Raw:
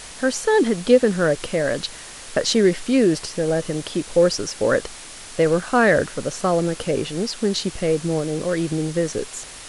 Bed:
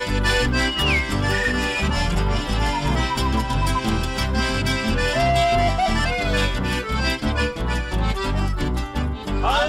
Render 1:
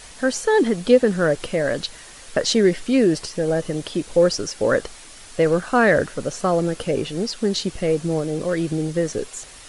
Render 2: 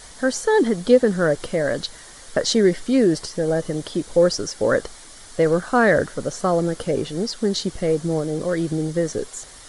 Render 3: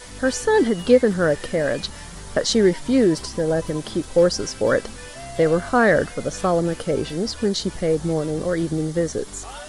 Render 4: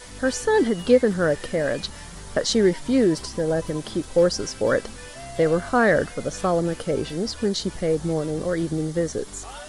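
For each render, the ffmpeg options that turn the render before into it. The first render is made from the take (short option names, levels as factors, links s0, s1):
-af "afftdn=nr=6:nf=-39"
-af "equalizer=f=2600:w=4.9:g=-11"
-filter_complex "[1:a]volume=0.126[s0];[0:a][s0]amix=inputs=2:normalize=0"
-af "volume=0.794"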